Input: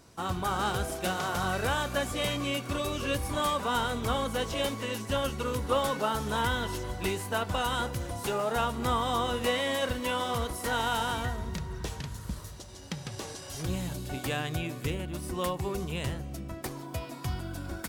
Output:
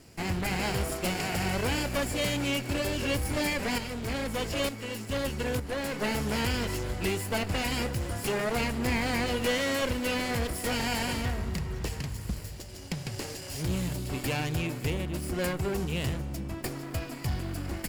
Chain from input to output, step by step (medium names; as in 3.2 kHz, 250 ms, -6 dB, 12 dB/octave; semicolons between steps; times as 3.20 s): comb filter that takes the minimum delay 0.41 ms; saturation -25 dBFS, distortion -18 dB; 3.78–6.02 s: tremolo saw up 1.1 Hz, depth 55%; trim +4 dB